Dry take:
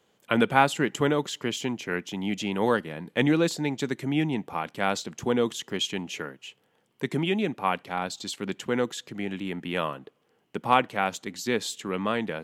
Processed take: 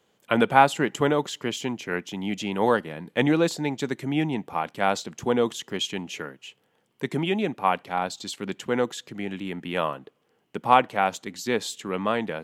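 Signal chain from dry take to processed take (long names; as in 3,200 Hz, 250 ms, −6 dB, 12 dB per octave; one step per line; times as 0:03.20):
dynamic equaliser 760 Hz, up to +5 dB, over −35 dBFS, Q 1.1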